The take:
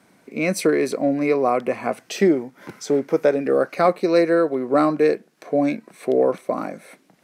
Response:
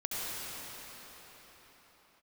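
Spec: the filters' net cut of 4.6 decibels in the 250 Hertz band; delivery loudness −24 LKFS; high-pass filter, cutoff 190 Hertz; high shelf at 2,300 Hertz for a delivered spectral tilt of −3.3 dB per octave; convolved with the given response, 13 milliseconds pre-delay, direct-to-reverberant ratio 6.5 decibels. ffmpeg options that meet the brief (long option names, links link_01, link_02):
-filter_complex "[0:a]highpass=190,equalizer=frequency=250:width_type=o:gain=-5.5,highshelf=frequency=2300:gain=8,asplit=2[link_01][link_02];[1:a]atrim=start_sample=2205,adelay=13[link_03];[link_02][link_03]afir=irnorm=-1:irlink=0,volume=-13dB[link_04];[link_01][link_04]amix=inputs=2:normalize=0,volume=-3dB"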